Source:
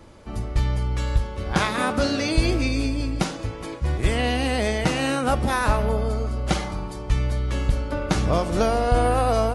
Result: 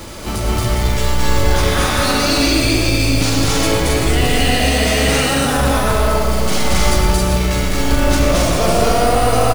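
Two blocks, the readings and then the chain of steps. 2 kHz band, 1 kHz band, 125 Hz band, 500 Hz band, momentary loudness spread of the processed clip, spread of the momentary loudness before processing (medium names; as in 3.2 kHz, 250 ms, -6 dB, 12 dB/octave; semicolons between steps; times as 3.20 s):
+9.5 dB, +7.0 dB, +6.5 dB, +7.5 dB, 4 LU, 7 LU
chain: treble shelf 2.6 kHz +11.5 dB; in parallel at +2 dB: compressor with a negative ratio -26 dBFS; on the sum: peak limiter -14 dBFS, peak gain reduction 13 dB; companded quantiser 4-bit; saturation -19.5 dBFS, distortion -13 dB; on a send: loudspeakers at several distances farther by 78 m -1 dB, 93 m -2 dB; on the sum: algorithmic reverb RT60 1.5 s, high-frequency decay 0.35×, pre-delay 65 ms, DRR 1.5 dB; trim +4.5 dB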